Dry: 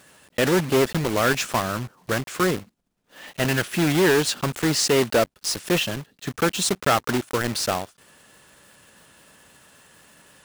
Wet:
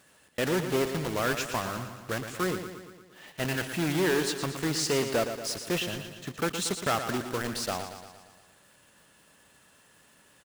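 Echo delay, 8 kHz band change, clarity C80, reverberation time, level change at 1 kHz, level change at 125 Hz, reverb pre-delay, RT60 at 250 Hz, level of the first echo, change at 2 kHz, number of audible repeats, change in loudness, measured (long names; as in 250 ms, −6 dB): 116 ms, −7.0 dB, no reverb audible, no reverb audible, −7.0 dB, −7.5 dB, no reverb audible, no reverb audible, −9.0 dB, −7.5 dB, 6, −7.5 dB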